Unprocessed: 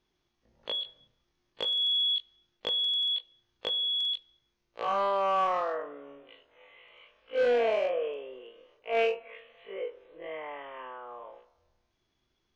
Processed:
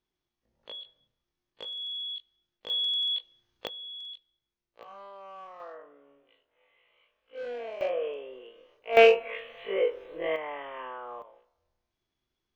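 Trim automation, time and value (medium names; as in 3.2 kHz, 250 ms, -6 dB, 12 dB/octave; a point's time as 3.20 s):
-9 dB
from 2.70 s 0 dB
from 3.67 s -12 dB
from 4.83 s -19 dB
from 5.60 s -12 dB
from 7.81 s 0 dB
from 8.97 s +10 dB
from 10.36 s +3 dB
from 11.22 s -7 dB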